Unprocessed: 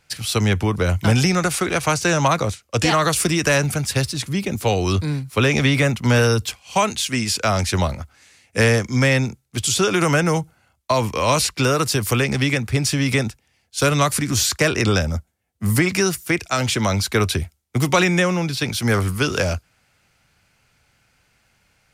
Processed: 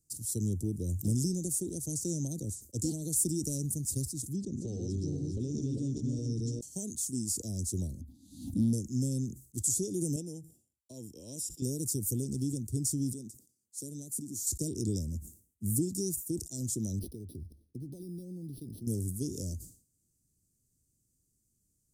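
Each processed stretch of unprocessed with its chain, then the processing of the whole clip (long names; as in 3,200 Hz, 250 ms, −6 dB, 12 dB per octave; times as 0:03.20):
0:04.36–0:06.61: feedback delay that plays each chunk backwards 203 ms, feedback 54%, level −2 dB + low-pass filter 6,200 Hz 24 dB per octave + downward compressor, threshold −15 dBFS
0:08.01–0:08.73: drawn EQ curve 140 Hz 0 dB, 270 Hz +11 dB, 430 Hz −22 dB, 930 Hz +8 dB, 1,600 Hz −18 dB, 3,700 Hz +5 dB, 5,600 Hz −17 dB, 8,000 Hz −24 dB, 11,000 Hz −14 dB + background raised ahead of every attack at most 74 dB per second
0:10.16–0:11.62: Savitzky-Golay smoothing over 25 samples + spectral tilt +4 dB per octave
0:13.13–0:14.47: high-pass filter 170 Hz + downward compressor 1.5 to 1, threshold −37 dBFS
0:16.99–0:18.87: downward compressor 10 to 1, threshold −24 dBFS + linearly interpolated sample-rate reduction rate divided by 6×
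whole clip: elliptic band-stop filter 320–7,300 Hz, stop band 70 dB; low-shelf EQ 430 Hz −8 dB; level that may fall only so fast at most 130 dB per second; level −5 dB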